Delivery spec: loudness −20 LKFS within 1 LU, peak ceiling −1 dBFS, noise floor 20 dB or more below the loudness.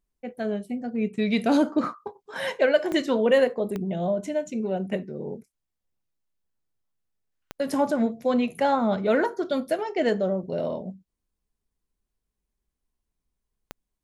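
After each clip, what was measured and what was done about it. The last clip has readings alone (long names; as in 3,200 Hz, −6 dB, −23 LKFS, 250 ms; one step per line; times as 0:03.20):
number of clicks 4; integrated loudness −25.5 LKFS; sample peak −8.5 dBFS; target loudness −20.0 LKFS
→ click removal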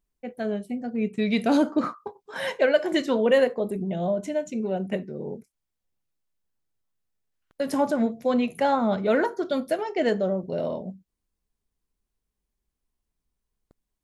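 number of clicks 0; integrated loudness −25.5 LKFS; sample peak −8.5 dBFS; target loudness −20.0 LKFS
→ level +5.5 dB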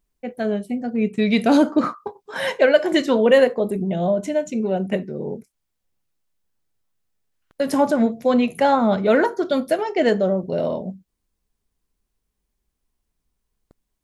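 integrated loudness −20.0 LKFS; sample peak −3.0 dBFS; background noise floor −78 dBFS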